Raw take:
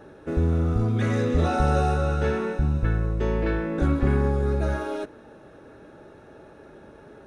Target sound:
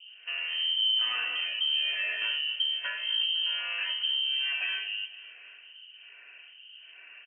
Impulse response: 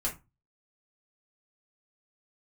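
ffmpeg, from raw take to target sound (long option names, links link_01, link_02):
-filter_complex "[0:a]acrossover=split=410[link_01][link_02];[link_01]aeval=exprs='val(0)*(1-1/2+1/2*cos(2*PI*1.2*n/s))':channel_layout=same[link_03];[link_02]aeval=exprs='val(0)*(1-1/2-1/2*cos(2*PI*1.2*n/s))':channel_layout=same[link_04];[link_03][link_04]amix=inputs=2:normalize=0,alimiter=level_in=0.5dB:limit=-24dB:level=0:latency=1:release=219,volume=-0.5dB,lowpass=frequency=2700:width_type=q:width=0.5098,lowpass=frequency=2700:width_type=q:width=0.6013,lowpass=frequency=2700:width_type=q:width=0.9,lowpass=frequency=2700:width_type=q:width=2.563,afreqshift=-3200,lowshelf=frequency=200:width_type=q:width=1.5:gain=-8.5,aecho=1:1:253|506|759|1012:0.15|0.0718|0.0345|0.0165,asplit=2[link_05][link_06];[1:a]atrim=start_sample=2205[link_07];[link_06][link_07]afir=irnorm=-1:irlink=0,volume=-12.5dB[link_08];[link_05][link_08]amix=inputs=2:normalize=0"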